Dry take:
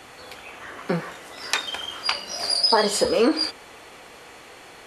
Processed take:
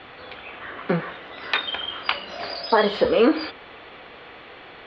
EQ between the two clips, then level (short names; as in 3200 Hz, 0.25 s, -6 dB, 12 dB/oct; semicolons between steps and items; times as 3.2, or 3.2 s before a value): elliptic low-pass 3700 Hz, stop band 80 dB; bell 890 Hz -3 dB 0.27 oct; +3.0 dB